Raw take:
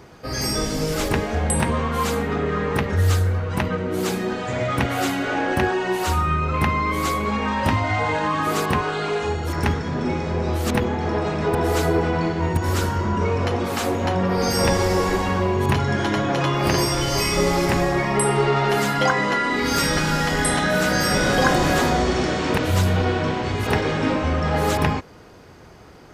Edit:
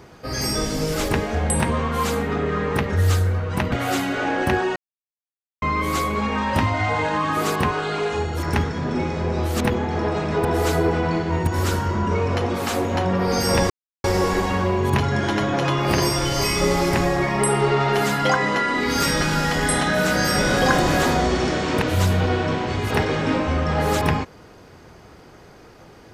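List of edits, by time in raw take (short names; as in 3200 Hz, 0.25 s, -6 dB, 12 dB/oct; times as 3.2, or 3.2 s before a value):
3.72–4.82 cut
5.86–6.72 mute
14.8 insert silence 0.34 s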